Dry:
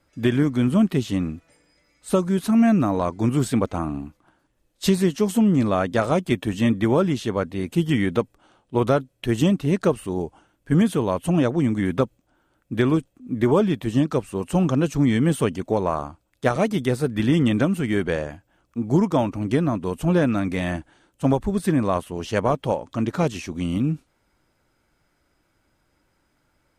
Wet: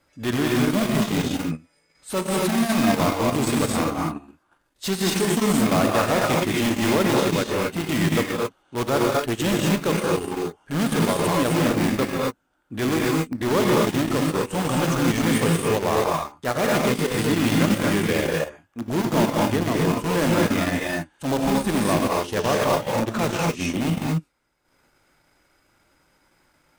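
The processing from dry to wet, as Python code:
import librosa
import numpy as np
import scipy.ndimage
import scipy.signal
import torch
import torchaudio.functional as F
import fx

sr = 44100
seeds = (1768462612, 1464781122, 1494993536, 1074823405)

p1 = fx.low_shelf(x, sr, hz=410.0, db=-4.0)
p2 = (np.mod(10.0 ** (19.5 / 20.0) * p1 + 1.0, 2.0) - 1.0) / 10.0 ** (19.5 / 20.0)
p3 = p1 + (p2 * 10.0 ** (-5.5 / 20.0))
p4 = fx.rev_gated(p3, sr, seeds[0], gate_ms=290, shape='rising', drr_db=-3.0)
p5 = fx.transient(p4, sr, attack_db=-7, sustain_db=-11)
y = fx.low_shelf(p5, sr, hz=130.0, db=-4.0)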